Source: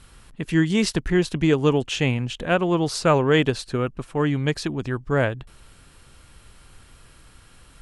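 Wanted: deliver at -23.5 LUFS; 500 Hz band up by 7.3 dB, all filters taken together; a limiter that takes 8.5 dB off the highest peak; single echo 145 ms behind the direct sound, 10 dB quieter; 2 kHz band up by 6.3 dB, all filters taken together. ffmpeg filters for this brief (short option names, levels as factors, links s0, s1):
-af "equalizer=f=500:t=o:g=8.5,equalizer=f=2000:t=o:g=7.5,alimiter=limit=0.316:level=0:latency=1,aecho=1:1:145:0.316,volume=0.708"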